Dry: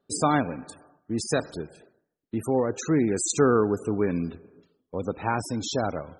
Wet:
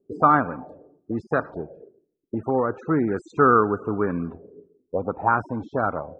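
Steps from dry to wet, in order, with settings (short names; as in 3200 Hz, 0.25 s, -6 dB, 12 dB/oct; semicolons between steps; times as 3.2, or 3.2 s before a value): envelope low-pass 370–1300 Hz up, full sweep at -23 dBFS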